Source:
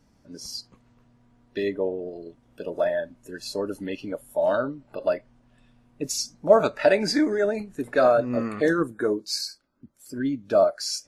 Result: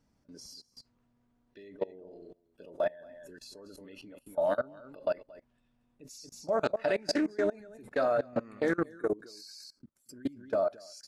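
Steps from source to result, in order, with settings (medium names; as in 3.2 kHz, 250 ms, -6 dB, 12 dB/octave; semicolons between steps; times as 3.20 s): delay 229 ms -11 dB; level held to a coarse grid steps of 23 dB; loudspeaker Doppler distortion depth 0.15 ms; trim -3.5 dB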